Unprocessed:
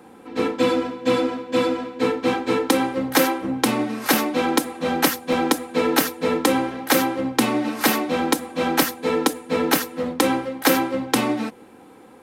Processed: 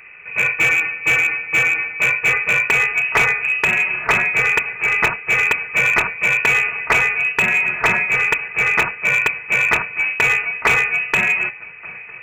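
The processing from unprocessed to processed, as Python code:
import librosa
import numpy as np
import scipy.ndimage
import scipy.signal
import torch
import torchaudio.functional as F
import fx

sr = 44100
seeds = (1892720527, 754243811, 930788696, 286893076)

y = fx.echo_swing(x, sr, ms=1182, ratio=1.5, feedback_pct=60, wet_db=-23.5)
y = fx.freq_invert(y, sr, carrier_hz=2800)
y = fx.slew_limit(y, sr, full_power_hz=340.0)
y = y * 10.0 ** (5.0 / 20.0)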